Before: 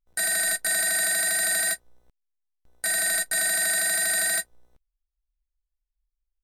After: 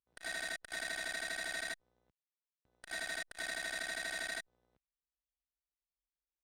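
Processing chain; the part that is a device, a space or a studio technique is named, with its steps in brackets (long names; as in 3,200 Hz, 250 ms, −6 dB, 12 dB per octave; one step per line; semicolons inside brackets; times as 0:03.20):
valve radio (band-pass filter 91–4,400 Hz; tube saturation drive 22 dB, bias 0.75; saturating transformer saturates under 2,400 Hz)
level −3.5 dB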